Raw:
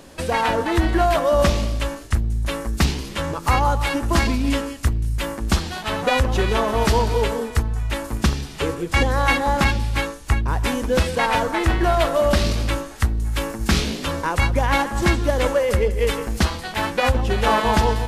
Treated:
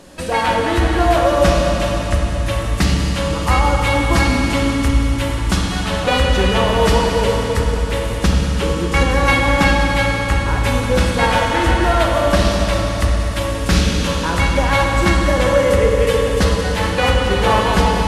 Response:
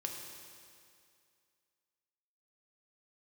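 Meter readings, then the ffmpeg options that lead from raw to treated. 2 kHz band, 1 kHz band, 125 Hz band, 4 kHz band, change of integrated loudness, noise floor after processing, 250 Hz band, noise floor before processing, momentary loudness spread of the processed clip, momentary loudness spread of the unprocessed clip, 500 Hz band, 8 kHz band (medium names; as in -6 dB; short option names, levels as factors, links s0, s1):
+5.0 dB, +4.0 dB, +5.0 dB, +5.5 dB, +5.0 dB, -21 dBFS, +5.0 dB, -35 dBFS, 5 LU, 7 LU, +5.0 dB, +4.5 dB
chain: -filter_complex "[1:a]atrim=start_sample=2205,asetrate=23373,aresample=44100[s0];[0:a][s0]afir=irnorm=-1:irlink=0"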